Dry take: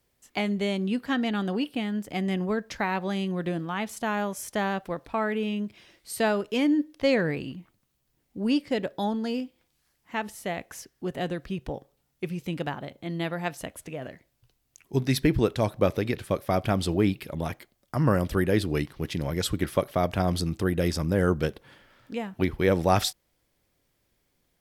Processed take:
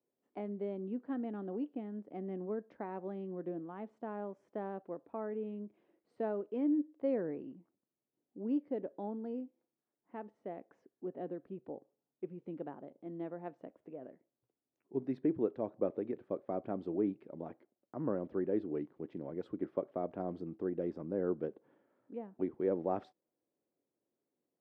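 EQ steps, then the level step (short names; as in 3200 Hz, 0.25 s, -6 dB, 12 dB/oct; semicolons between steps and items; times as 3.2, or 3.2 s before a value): ladder band-pass 400 Hz, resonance 25%; +1.5 dB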